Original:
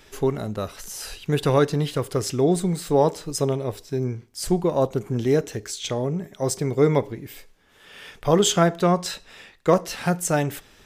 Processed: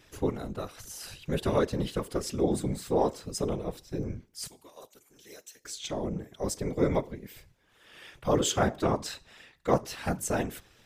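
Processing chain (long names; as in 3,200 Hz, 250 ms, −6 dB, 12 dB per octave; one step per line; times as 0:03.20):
0:04.47–0:05.65: first difference
random phases in short frames
level −7.5 dB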